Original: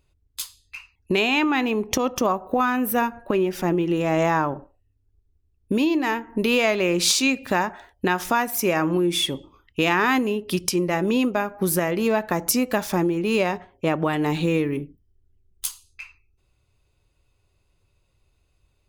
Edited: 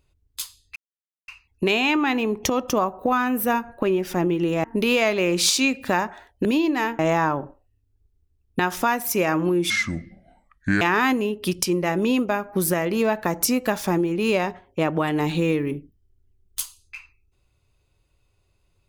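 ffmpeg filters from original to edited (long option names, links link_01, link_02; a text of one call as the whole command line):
ffmpeg -i in.wav -filter_complex "[0:a]asplit=8[link_01][link_02][link_03][link_04][link_05][link_06][link_07][link_08];[link_01]atrim=end=0.76,asetpts=PTS-STARTPTS,afade=type=out:start_time=0.756:duration=0.004:curve=hsin,apad=pad_dur=0.52[link_09];[link_02]atrim=start=0.76:end=4.122,asetpts=PTS-STARTPTS,afade=type=in:duration=0.004:curve=hsin[link_10];[link_03]atrim=start=6.258:end=8.072[link_11];[link_04]atrim=start=5.718:end=6.262[link_12];[link_05]atrim=start=4.118:end=5.722[link_13];[link_06]atrim=start=8.068:end=9.184[link_14];[link_07]atrim=start=9.18:end=9.87,asetpts=PTS-STARTPTS,asetrate=27342,aresample=44100,atrim=end_sample=49079,asetpts=PTS-STARTPTS[link_15];[link_08]atrim=start=9.866[link_16];[link_09][link_10]concat=n=2:v=0:a=1[link_17];[link_17][link_11]acrossfade=duration=0.004:curve1=hsin:curve2=hsin[link_18];[link_18][link_12]acrossfade=duration=0.004:curve1=hsin:curve2=hsin[link_19];[link_19][link_13]acrossfade=duration=0.004:curve1=hsin:curve2=hsin[link_20];[link_20][link_14]acrossfade=duration=0.004:curve1=hsin:curve2=hsin[link_21];[link_21][link_15]acrossfade=duration=0.004:curve1=hsin:curve2=hsin[link_22];[link_22][link_16]acrossfade=duration=0.004:curve1=hsin:curve2=hsin" out.wav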